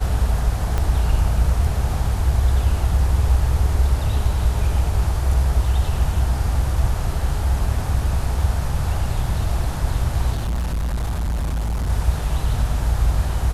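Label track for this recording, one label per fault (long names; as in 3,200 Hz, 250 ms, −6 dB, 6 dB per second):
0.780000	0.780000	click −10 dBFS
10.320000	11.900000	clipping −19.5 dBFS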